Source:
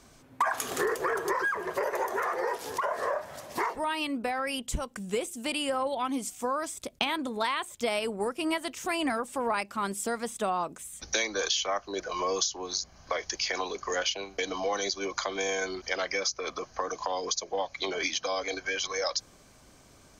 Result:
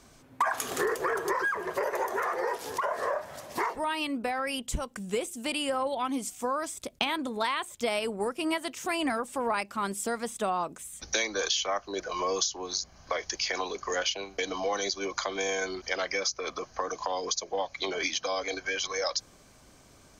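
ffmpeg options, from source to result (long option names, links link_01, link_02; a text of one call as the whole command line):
ffmpeg -i in.wav -filter_complex "[0:a]asettb=1/sr,asplit=3[link_01][link_02][link_03];[link_01]atrim=end=8.394[link_04];[link_02]atrim=start=8.39:end=8.89,asetpts=PTS-STARTPTS,afade=type=in:duration=0.004:curve=qsin,afade=type=out:start_time=0.496:duration=0.004:curve=qsin,highpass=82[link_05];[link_03]atrim=start=8.886[link_06];[link_04][link_05]acrossfade=duration=0.004:curve1=hsin:curve2=qsin[link_07];[link_07][link_06]acrossfade=duration=0.004:curve1=qsin:curve2=hsin" out.wav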